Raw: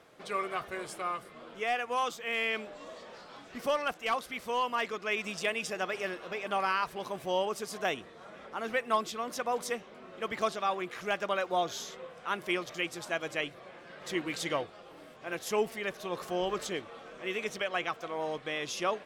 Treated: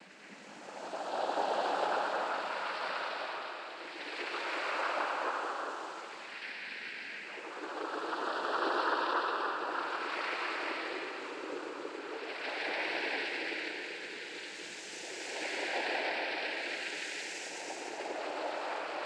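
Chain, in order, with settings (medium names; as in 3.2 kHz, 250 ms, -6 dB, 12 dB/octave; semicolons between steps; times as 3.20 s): high-pass 360 Hz 24 dB/octave; in parallel at -8.5 dB: bit crusher 7-bit; on the sum: chorus voices 2, 0.25 Hz, delay 25 ms, depth 4.7 ms; Paulstretch 8.1×, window 0.25 s, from 3.53 s; noise-vocoded speech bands 8; on a send at -2 dB: reverberation RT60 2.9 s, pre-delay 45 ms; on the sum: trim -5 dB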